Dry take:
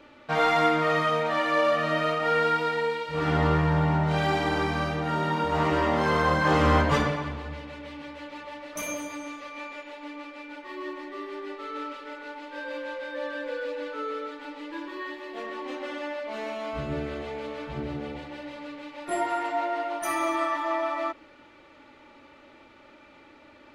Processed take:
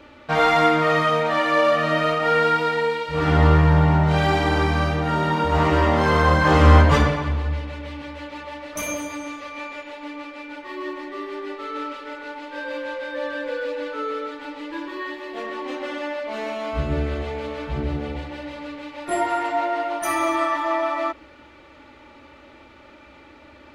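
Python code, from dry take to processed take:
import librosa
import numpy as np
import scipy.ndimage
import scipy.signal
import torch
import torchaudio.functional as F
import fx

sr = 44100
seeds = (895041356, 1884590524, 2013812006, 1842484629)

y = fx.peak_eq(x, sr, hz=67.0, db=12.0, octaves=0.73)
y = y * 10.0 ** (5.0 / 20.0)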